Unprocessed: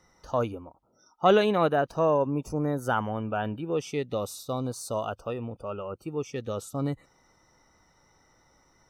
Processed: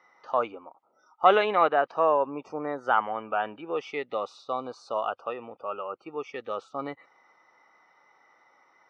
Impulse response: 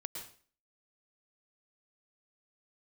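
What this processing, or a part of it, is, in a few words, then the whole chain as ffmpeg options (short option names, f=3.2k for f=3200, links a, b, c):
phone earpiece: -af "highpass=420,equalizer=f=800:t=q:w=4:g=5,equalizer=f=1.2k:t=q:w=4:g=7,equalizer=f=2.1k:t=q:w=4:g=8,equalizer=f=3.8k:t=q:w=4:g=-3,lowpass=f=4.2k:w=0.5412,lowpass=f=4.2k:w=1.3066"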